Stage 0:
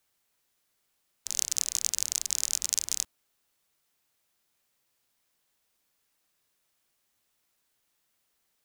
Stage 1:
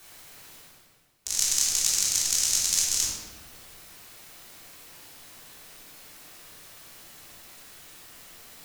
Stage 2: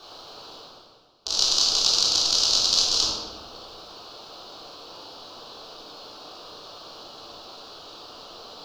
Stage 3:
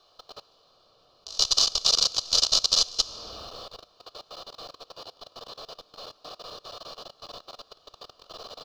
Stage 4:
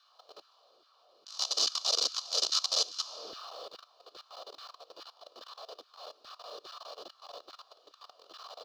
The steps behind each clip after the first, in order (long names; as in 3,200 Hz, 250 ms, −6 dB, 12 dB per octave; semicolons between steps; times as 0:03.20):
reversed playback; upward compression, threshold −36 dBFS; reversed playback; rectangular room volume 730 cubic metres, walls mixed, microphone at 3.4 metres
drawn EQ curve 160 Hz 0 dB, 470 Hz +13 dB, 1,300 Hz +10 dB, 2,000 Hz −15 dB, 2,900 Hz +5 dB, 4,500 Hz +12 dB, 8,600 Hz −20 dB; level +2 dB
comb filter 1.7 ms, depth 41%; output level in coarse steps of 21 dB; level +1 dB
auto-filter high-pass saw down 2.4 Hz 290–1,700 Hz; transient designer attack −7 dB, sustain 0 dB; level −5 dB